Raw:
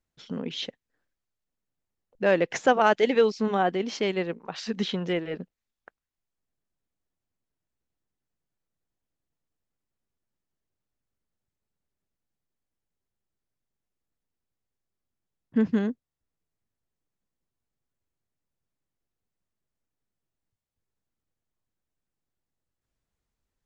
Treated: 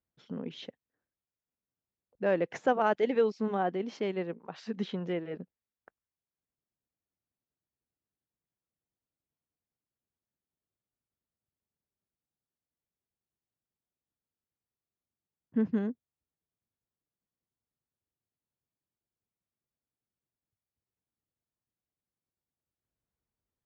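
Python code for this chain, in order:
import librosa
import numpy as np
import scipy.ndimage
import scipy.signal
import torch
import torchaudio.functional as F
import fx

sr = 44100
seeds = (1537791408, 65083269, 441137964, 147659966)

y = scipy.signal.sosfilt(scipy.signal.butter(2, 59.0, 'highpass', fs=sr, output='sos'), x)
y = fx.high_shelf(y, sr, hz=2400.0, db=-12.0)
y = F.gain(torch.from_numpy(y), -5.0).numpy()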